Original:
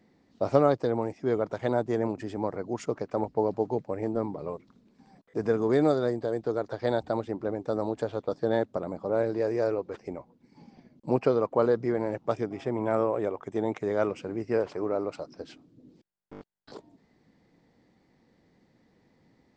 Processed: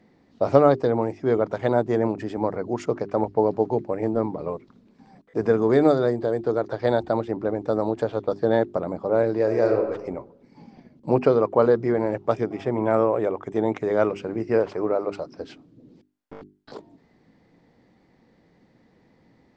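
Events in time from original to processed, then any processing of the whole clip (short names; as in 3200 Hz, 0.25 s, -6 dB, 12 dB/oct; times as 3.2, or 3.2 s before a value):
9.43–9.9 reverb throw, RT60 0.93 s, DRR 3.5 dB
whole clip: LPF 4000 Hz 6 dB/oct; notches 50/100/150/200/250/300/350/400 Hz; gain +6 dB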